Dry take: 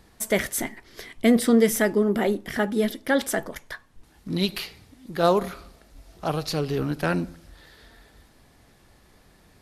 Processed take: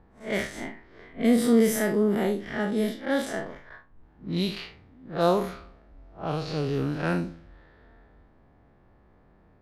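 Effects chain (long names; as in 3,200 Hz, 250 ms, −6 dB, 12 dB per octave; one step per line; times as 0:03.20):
spectrum smeared in time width 105 ms
low-pass that shuts in the quiet parts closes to 1,200 Hz, open at −21 dBFS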